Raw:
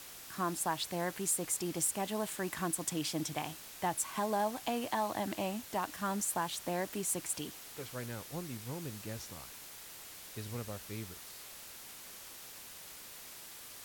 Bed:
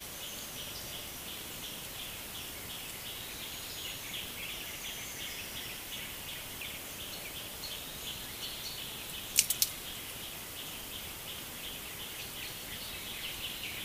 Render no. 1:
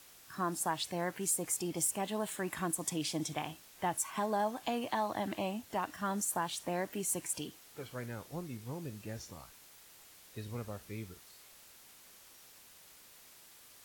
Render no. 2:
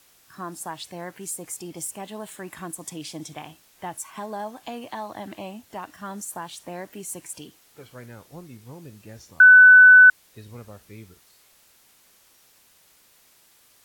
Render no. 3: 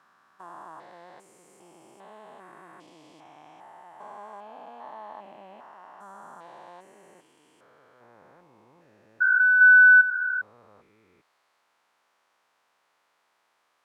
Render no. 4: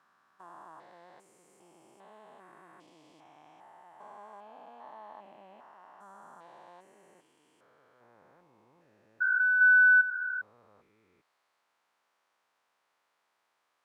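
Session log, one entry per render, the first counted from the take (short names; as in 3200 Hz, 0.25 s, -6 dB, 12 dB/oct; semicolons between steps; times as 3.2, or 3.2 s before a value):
noise print and reduce 8 dB
9.4–10.1 bleep 1500 Hz -6.5 dBFS
stepped spectrum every 0.4 s; band-pass 1000 Hz, Q 1.3
gain -6.5 dB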